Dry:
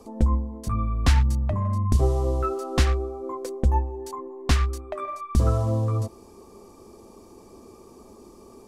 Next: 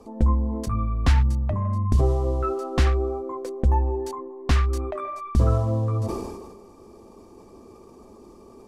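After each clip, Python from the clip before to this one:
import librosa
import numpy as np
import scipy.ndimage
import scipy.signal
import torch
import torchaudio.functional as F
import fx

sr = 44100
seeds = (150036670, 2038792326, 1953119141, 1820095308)

y = fx.high_shelf(x, sr, hz=4500.0, db=-8.5)
y = fx.sustainer(y, sr, db_per_s=40.0)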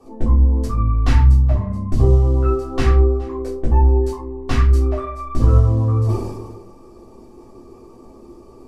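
y = x + 10.0 ** (-21.5 / 20.0) * np.pad(x, (int(420 * sr / 1000.0), 0))[:len(x)]
y = fx.room_shoebox(y, sr, seeds[0], volume_m3=190.0, walls='furnished', distance_m=3.5)
y = y * librosa.db_to_amplitude(-5.0)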